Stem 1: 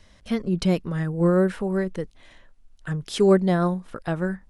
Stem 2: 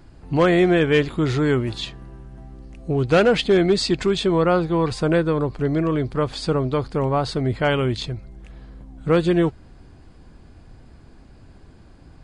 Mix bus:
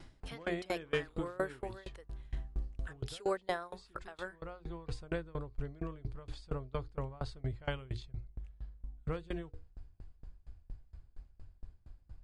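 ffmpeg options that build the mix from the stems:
-filter_complex "[0:a]highpass=700,bandreject=f=6.1k:w=12,volume=-1.5dB,asplit=2[a][b];[1:a]asubboost=boost=9.5:cutoff=72,bandreject=f=60:t=h:w=6,bandreject=f=120:t=h:w=6,bandreject=f=180:t=h:w=6,bandreject=f=240:t=h:w=6,bandreject=f=300:t=h:w=6,bandreject=f=360:t=h:w=6,bandreject=f=420:t=h:w=6,bandreject=f=480:t=h:w=6,volume=-2dB,afade=t=out:st=2.61:d=0.6:silence=0.298538[c];[b]apad=whole_len=539519[d];[c][d]sidechaincompress=threshold=-45dB:ratio=5:attack=11:release=374[e];[a][e]amix=inputs=2:normalize=0,aeval=exprs='val(0)*pow(10,-26*if(lt(mod(4.3*n/s,1),2*abs(4.3)/1000),1-mod(4.3*n/s,1)/(2*abs(4.3)/1000),(mod(4.3*n/s,1)-2*abs(4.3)/1000)/(1-2*abs(4.3)/1000))/20)':c=same"

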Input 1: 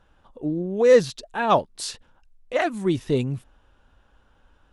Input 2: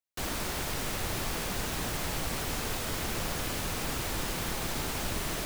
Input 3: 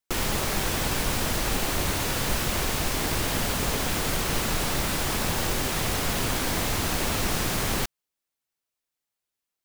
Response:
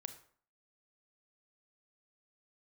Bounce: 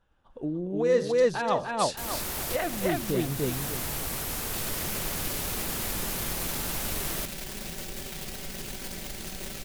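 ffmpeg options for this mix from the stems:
-filter_complex "[0:a]volume=-2.5dB,asplit=4[a][b][c][d];[b]volume=-6dB[e];[c]volume=-5.5dB[f];[1:a]equalizer=f=13k:t=o:w=1:g=10.5,adelay=1800,volume=-2dB[g];[2:a]equalizer=f=1.1k:t=o:w=0.79:g=-12,aecho=1:1:5.2:0.67,acrusher=bits=5:dc=4:mix=0:aa=0.000001,adelay=2400,volume=-8dB,asplit=3[h][i][j];[h]atrim=end=3.27,asetpts=PTS-STARTPTS,afade=t=out:st=3.266:d=0.004:c=hsin[k];[i]atrim=start=3.27:end=4.54,asetpts=PTS-STARTPTS,volume=0[l];[j]atrim=start=4.54,asetpts=PTS-STARTPTS,afade=t=in:d=0.004:c=hsin[m];[k][l][m]concat=n=3:v=0:a=1[n];[d]apad=whole_len=319903[o];[g][o]sidechaincompress=threshold=-24dB:ratio=8:attack=5.2:release=754[p];[a][n]amix=inputs=2:normalize=0,agate=range=-33dB:threshold=-49dB:ratio=3:detection=peak,acompressor=threshold=-33dB:ratio=6,volume=0dB[q];[3:a]atrim=start_sample=2205[r];[e][r]afir=irnorm=-1:irlink=0[s];[f]aecho=0:1:296|592|888|1184:1|0.3|0.09|0.027[t];[p][q][s][t]amix=inputs=4:normalize=0"

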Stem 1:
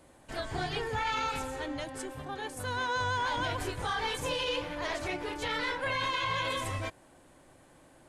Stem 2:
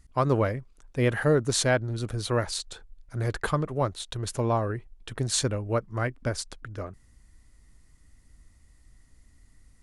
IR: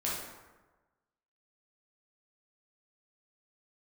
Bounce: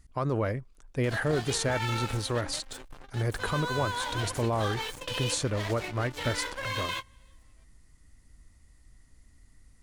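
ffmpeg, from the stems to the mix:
-filter_complex "[0:a]equalizer=f=4k:t=o:w=2.5:g=3.5,acompressor=mode=upward:threshold=-36dB:ratio=2.5,aeval=exprs='sgn(val(0))*max(abs(val(0))-0.0126,0)':c=same,adelay=750,volume=-0.5dB[a];[1:a]alimiter=limit=-19.5dB:level=0:latency=1:release=53,volume=-0.5dB,asplit=2[b][c];[c]apad=whole_len=389440[d];[a][d]sidechaingate=range=-31dB:threshold=-47dB:ratio=16:detection=peak[e];[e][b]amix=inputs=2:normalize=0"

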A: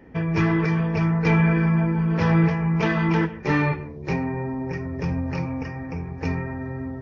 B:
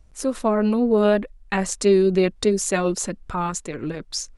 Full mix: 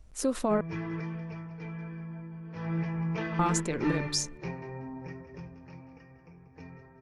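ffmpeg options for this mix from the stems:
-filter_complex "[0:a]flanger=delay=5.5:depth=1:regen=-53:speed=1.2:shape=triangular,adelay=350,afade=t=out:st=1.03:d=0.55:silence=0.398107,afade=t=in:st=2.51:d=0.39:silence=0.251189,afade=t=out:st=5.04:d=0.5:silence=0.354813,asplit=2[a][b];[b]volume=-12dB[c];[1:a]alimiter=limit=-16.5dB:level=0:latency=1:release=83,volume=-1.5dB,asplit=3[d][e][f];[d]atrim=end=0.61,asetpts=PTS-STARTPTS,afade=t=out:st=0.606:d=0.004:c=hsin[g];[e]atrim=start=0.61:end=3.39,asetpts=PTS-STARTPTS,volume=0[h];[f]atrim=start=3.39,asetpts=PTS-STARTPTS,afade=t=in:d=0.004:c=hsin[i];[g][h][i]concat=n=3:v=0:a=1[j];[c]aecho=0:1:188|376|564|752:1|0.27|0.0729|0.0197[k];[a][j][k]amix=inputs=3:normalize=0"

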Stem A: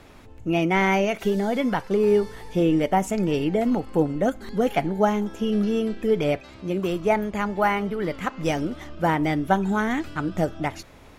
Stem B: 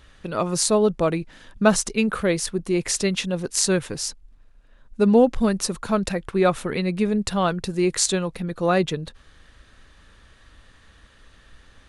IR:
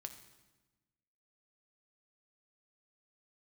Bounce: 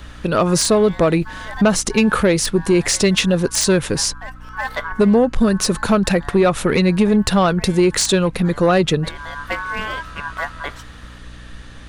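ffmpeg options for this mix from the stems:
-filter_complex "[0:a]aeval=exprs='val(0)*sin(2*PI*1300*n/s)':c=same,aeval=exprs='clip(val(0),-1,0.126)':c=same,volume=1dB[a];[1:a]acompressor=threshold=-20dB:ratio=10,aeval=exprs='0.355*sin(PI/2*2*val(0)/0.355)':c=same,volume=1.5dB,asplit=2[b][c];[c]apad=whole_len=493273[d];[a][d]sidechaincompress=threshold=-28dB:ratio=8:attack=5.7:release=519[e];[e][b]amix=inputs=2:normalize=0,acrossover=split=5400[f][g];[g]acompressor=threshold=-19dB:ratio=4:attack=1:release=60[h];[f][h]amix=inputs=2:normalize=0,aeval=exprs='val(0)+0.0112*(sin(2*PI*60*n/s)+sin(2*PI*2*60*n/s)/2+sin(2*PI*3*60*n/s)/3+sin(2*PI*4*60*n/s)/4+sin(2*PI*5*60*n/s)/5)':c=same"

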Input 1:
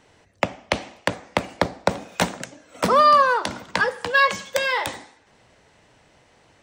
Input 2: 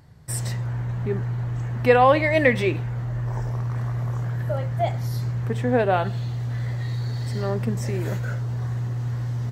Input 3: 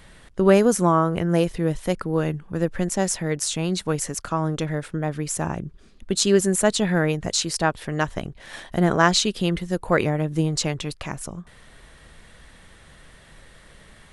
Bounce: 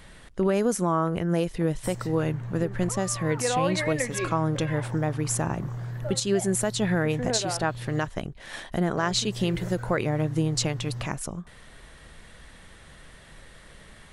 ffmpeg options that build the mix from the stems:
-filter_complex "[0:a]afwtdn=0.0355,alimiter=limit=-13dB:level=0:latency=1,volume=-9.5dB[a];[1:a]highpass=f=100:w=0.5412,highpass=f=100:w=1.3066,adelay=1550,volume=-6.5dB,asplit=3[b][c][d];[b]atrim=end=8.08,asetpts=PTS-STARTPTS,afade=t=out:st=8.076:d=0.004:c=hsin[e];[c]atrim=start=8.08:end=8.97,asetpts=PTS-STARTPTS,volume=0[f];[d]atrim=start=8.97,asetpts=PTS-STARTPTS,afade=t=in:d=0.004:c=hsin[g];[e][f][g]concat=n=3:v=0:a=1[h];[2:a]volume=0dB,asplit=2[i][j];[j]apad=whole_len=292106[k];[a][k]sidechaincompress=threshold=-24dB:ratio=8:attack=16:release=1160[l];[l][h][i]amix=inputs=3:normalize=0,alimiter=limit=-13.5dB:level=0:latency=1:release=316"

